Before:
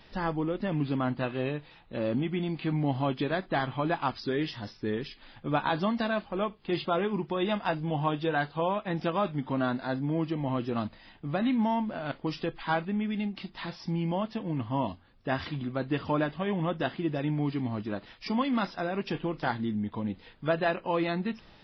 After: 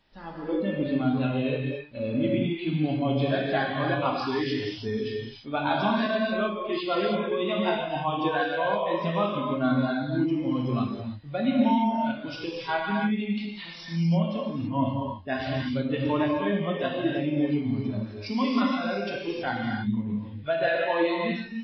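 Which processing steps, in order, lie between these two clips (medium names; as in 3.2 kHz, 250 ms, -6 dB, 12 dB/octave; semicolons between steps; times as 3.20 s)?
gated-style reverb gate 350 ms flat, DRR -3.5 dB; spectral noise reduction 13 dB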